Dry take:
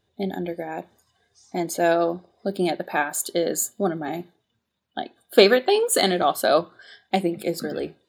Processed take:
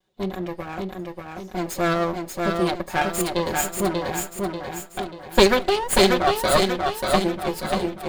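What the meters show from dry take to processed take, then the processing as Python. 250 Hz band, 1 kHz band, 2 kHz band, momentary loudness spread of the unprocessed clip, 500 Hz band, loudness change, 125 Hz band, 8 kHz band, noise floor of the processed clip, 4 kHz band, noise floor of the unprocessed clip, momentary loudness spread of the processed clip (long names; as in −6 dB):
+1.5 dB, +2.5 dB, +1.5 dB, 16 LU, −0.5 dB, 0.0 dB, +4.5 dB, 0.0 dB, −42 dBFS, +1.5 dB, −75 dBFS, 14 LU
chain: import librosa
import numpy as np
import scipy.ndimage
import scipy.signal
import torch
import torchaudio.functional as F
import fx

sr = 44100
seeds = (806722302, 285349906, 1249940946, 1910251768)

y = fx.lower_of_two(x, sr, delay_ms=5.4)
y = fx.echo_feedback(y, sr, ms=588, feedback_pct=45, wet_db=-3.5)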